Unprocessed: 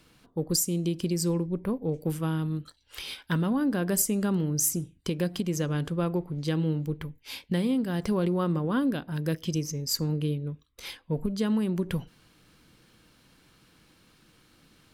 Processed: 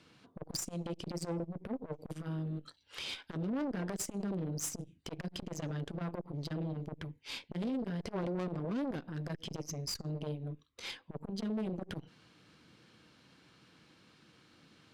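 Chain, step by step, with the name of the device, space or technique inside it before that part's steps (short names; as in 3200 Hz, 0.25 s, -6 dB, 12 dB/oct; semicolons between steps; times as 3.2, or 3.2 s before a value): valve radio (BPF 100–6000 Hz; tube stage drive 31 dB, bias 0.55; core saturation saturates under 340 Hz); gain +1 dB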